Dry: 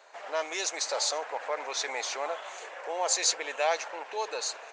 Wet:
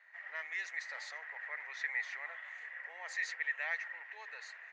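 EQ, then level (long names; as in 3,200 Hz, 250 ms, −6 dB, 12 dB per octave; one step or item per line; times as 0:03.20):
resonant band-pass 1,900 Hz, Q 17
+9.5 dB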